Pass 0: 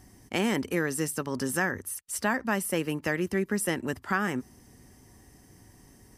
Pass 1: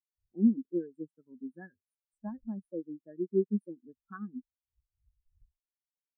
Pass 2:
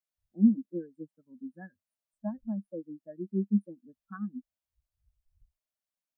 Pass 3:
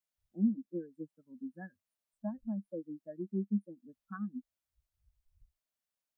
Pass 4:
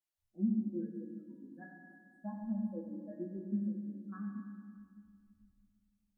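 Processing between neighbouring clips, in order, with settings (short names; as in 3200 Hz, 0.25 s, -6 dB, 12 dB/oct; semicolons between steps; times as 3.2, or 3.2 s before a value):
wind noise 88 Hz -45 dBFS; Chebyshev band-stop 1500–5200 Hz, order 2; spectral expander 4:1; gain -1 dB
thirty-one-band EQ 200 Hz +6 dB, 400 Hz -12 dB, 630 Hz +10 dB
compressor 1.5:1, threshold -39 dBFS, peak gain reduction 8.5 dB
chorus voices 4, 0.34 Hz, delay 12 ms, depth 2.6 ms; resonator 56 Hz, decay 1.2 s, harmonics all, mix 70%; reverb RT60 2.1 s, pre-delay 4 ms, DRR 1 dB; gain +6 dB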